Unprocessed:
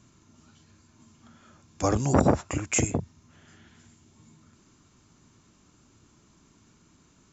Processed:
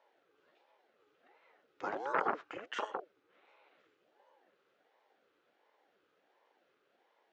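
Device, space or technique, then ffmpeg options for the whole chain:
voice changer toy: -af "aeval=exprs='val(0)*sin(2*PI*470*n/s+470*0.6/1.4*sin(2*PI*1.4*n/s))':channel_layout=same,highpass=460,equalizer=frequency=640:width_type=q:width=4:gain=-4,equalizer=frequency=960:width_type=q:width=4:gain=-4,equalizer=frequency=1400:width_type=q:width=4:gain=4,lowpass=frequency=3500:width=0.5412,lowpass=frequency=3500:width=1.3066,volume=-6.5dB"

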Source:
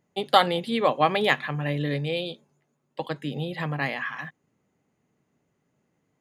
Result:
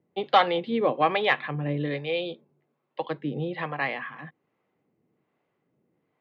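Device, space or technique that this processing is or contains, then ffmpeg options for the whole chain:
guitar amplifier with harmonic tremolo: -filter_complex "[0:a]acrossover=split=520[link_01][link_02];[link_01]aeval=exprs='val(0)*(1-0.7/2+0.7/2*cos(2*PI*1.2*n/s))':channel_layout=same[link_03];[link_02]aeval=exprs='val(0)*(1-0.7/2-0.7/2*cos(2*PI*1.2*n/s))':channel_layout=same[link_04];[link_03][link_04]amix=inputs=2:normalize=0,asoftclip=type=tanh:threshold=-12dB,highpass=91,equalizer=frequency=340:width_type=q:width=4:gain=6,equalizer=frequency=490:width_type=q:width=4:gain=5,equalizer=frequency=750:width_type=q:width=4:gain=3,equalizer=frequency=1100:width_type=q:width=4:gain=4,equalizer=frequency=2200:width_type=q:width=4:gain=3,lowpass=frequency=3900:width=0.5412,lowpass=frequency=3900:width=1.3066"

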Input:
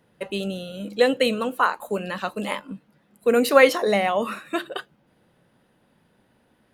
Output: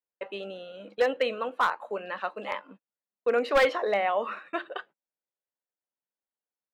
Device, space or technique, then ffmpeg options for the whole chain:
walkie-talkie: -af "highpass=480,lowpass=2300,asoftclip=type=hard:threshold=-14dB,agate=range=-33dB:threshold=-46dB:ratio=16:detection=peak,volume=-2.5dB"

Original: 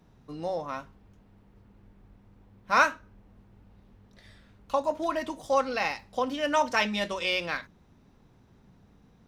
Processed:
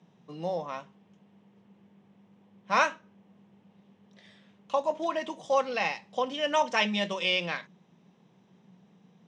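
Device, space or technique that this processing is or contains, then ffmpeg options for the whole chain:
television speaker: -af "highpass=frequency=160:width=0.5412,highpass=frequency=160:width=1.3066,equalizer=frequency=180:width_type=q:width=4:gain=8,equalizer=frequency=270:width_type=q:width=4:gain=-8,equalizer=frequency=1400:width_type=q:width=4:gain=-7,equalizer=frequency=3100:width_type=q:width=4:gain=5,equalizer=frequency=4500:width_type=q:width=4:gain=-6,lowpass=frequency=7300:width=0.5412,lowpass=frequency=7300:width=1.3066"

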